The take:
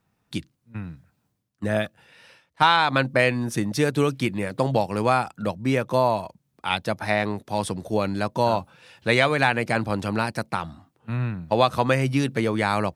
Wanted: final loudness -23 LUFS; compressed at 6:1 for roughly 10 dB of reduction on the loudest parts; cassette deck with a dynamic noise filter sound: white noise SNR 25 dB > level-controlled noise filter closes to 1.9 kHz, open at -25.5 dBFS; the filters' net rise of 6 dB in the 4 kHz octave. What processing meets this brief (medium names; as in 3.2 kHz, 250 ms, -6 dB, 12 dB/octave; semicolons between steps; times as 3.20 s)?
peaking EQ 4 kHz +7 dB; compression 6:1, threshold -22 dBFS; white noise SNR 25 dB; level-controlled noise filter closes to 1.9 kHz, open at -25.5 dBFS; trim +5.5 dB